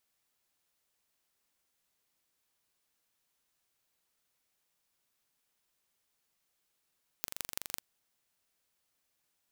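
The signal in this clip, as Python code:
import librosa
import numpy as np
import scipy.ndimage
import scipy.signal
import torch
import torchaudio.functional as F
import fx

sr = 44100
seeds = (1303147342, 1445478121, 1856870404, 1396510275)

y = fx.impulse_train(sr, length_s=0.57, per_s=23.9, accent_every=4, level_db=-6.5)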